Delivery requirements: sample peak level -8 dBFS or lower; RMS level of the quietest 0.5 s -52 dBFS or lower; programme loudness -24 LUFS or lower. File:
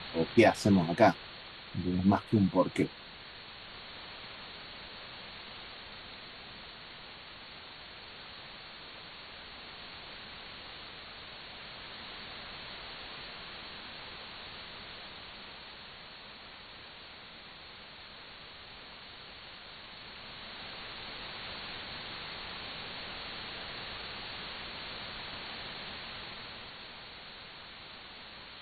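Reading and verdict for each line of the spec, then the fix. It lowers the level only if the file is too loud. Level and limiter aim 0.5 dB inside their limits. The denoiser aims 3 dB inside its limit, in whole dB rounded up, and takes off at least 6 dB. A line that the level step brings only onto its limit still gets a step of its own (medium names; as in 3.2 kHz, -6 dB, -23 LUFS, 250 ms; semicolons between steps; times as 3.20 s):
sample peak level -10.5 dBFS: pass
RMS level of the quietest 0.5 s -50 dBFS: fail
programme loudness -37.0 LUFS: pass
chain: noise reduction 6 dB, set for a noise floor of -50 dBFS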